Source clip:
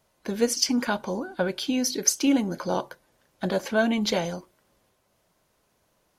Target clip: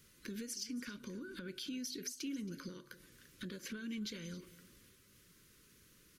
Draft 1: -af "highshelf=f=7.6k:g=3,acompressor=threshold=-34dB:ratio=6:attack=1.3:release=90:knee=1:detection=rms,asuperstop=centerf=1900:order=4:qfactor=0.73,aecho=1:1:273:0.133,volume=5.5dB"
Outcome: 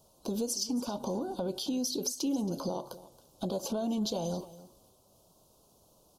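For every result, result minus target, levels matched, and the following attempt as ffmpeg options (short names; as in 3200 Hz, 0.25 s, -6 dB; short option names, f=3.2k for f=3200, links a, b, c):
2000 Hz band -18.5 dB; compressor: peak gain reduction -10 dB
-af "highshelf=f=7.6k:g=3,acompressor=threshold=-34dB:ratio=6:attack=1.3:release=90:knee=1:detection=rms,asuperstop=centerf=750:order=4:qfactor=0.73,aecho=1:1:273:0.133,volume=5.5dB"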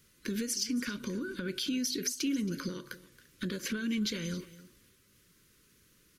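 compressor: peak gain reduction -10 dB
-af "highshelf=f=7.6k:g=3,acompressor=threshold=-46dB:ratio=6:attack=1.3:release=90:knee=1:detection=rms,asuperstop=centerf=750:order=4:qfactor=0.73,aecho=1:1:273:0.133,volume=5.5dB"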